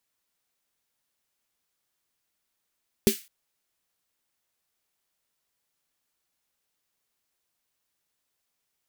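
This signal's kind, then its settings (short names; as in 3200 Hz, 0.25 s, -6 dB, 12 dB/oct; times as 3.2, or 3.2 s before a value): snare drum length 0.21 s, tones 220 Hz, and 390 Hz, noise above 1900 Hz, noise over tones -9 dB, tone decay 0.11 s, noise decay 0.32 s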